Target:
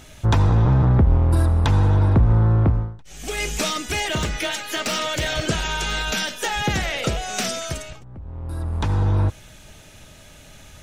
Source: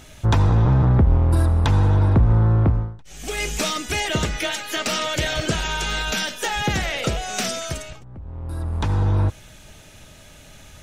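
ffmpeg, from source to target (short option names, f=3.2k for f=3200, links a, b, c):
-filter_complex "[0:a]asettb=1/sr,asplit=3[a][b][c];[a]atrim=end=3.794[d];[b]atrim=start=3.79:end=5.29,asetpts=PTS-STARTPTS,afade=t=in:d=0.004:c=qsin,afade=t=out:st=1.496:d=0.004:c=qsin,asoftclip=type=hard:threshold=-18dB[e];[c]atrim=start=5.286[f];[d][e]acrossfade=d=0.004:c1=hsin:c2=qsin[g];[g][f]acrossfade=d=0.004:c1=qsin:c2=hsin"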